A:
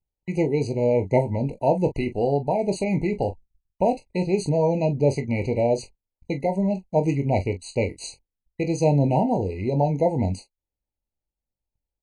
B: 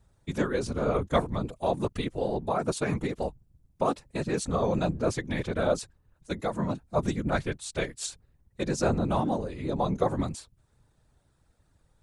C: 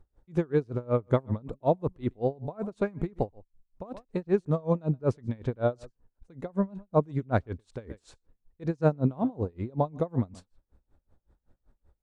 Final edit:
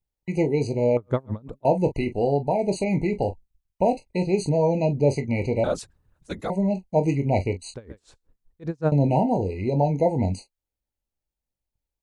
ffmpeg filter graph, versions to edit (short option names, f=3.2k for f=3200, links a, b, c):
-filter_complex "[2:a]asplit=2[a][b];[0:a]asplit=4[c][d][e][f];[c]atrim=end=0.972[g];[a]atrim=start=0.968:end=1.652[h];[d]atrim=start=1.648:end=5.642[i];[1:a]atrim=start=5.638:end=6.502[j];[e]atrim=start=6.498:end=7.742[k];[b]atrim=start=7.738:end=8.922[l];[f]atrim=start=8.918[m];[g][h]acrossfade=d=0.004:c1=hsin:c2=hsin[n];[n][i]acrossfade=d=0.004:c1=hsin:c2=hsin[o];[o][j]acrossfade=d=0.004:c1=hsin:c2=hsin[p];[p][k]acrossfade=d=0.004:c1=hsin:c2=hsin[q];[q][l]acrossfade=d=0.004:c1=hsin:c2=hsin[r];[r][m]acrossfade=d=0.004:c1=hsin:c2=hsin"